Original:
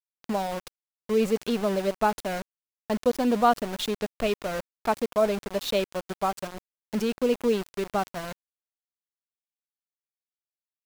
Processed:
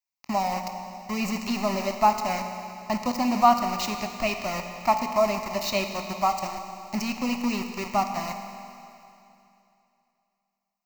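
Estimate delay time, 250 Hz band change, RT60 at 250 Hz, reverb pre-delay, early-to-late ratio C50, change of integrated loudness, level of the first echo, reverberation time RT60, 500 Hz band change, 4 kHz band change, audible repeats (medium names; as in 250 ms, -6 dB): no echo, +0.5 dB, 2.8 s, 16 ms, 6.5 dB, +1.0 dB, no echo, 2.8 s, -3.5 dB, +2.0 dB, no echo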